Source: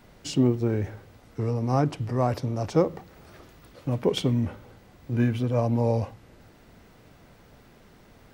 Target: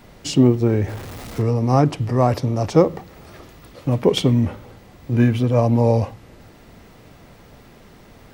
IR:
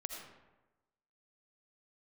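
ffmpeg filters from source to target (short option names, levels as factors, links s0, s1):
-filter_complex "[0:a]asettb=1/sr,asplit=3[s0][s1][s2];[s0]atrim=end=0.884[s3];[s1]atrim=start=0.88:end=1.42,asetpts=PTS-STARTPTS,afade=t=in:d=0.004:c=qsin,afade=t=out:st=0.536:d=0.004:c=qsin,aeval=exprs='val(0)+0.5*0.0119*sgn(val(0))':c=same[s4];[s2]atrim=start=1.416[s5];[s3][s4]acrossfade=d=0.004:c1=hsin:c2=qsin[s6];[s6][s5]acrossfade=d=0.004:c1=qsin:c2=hsin,bandreject=f=1500:w=16,volume=2.37"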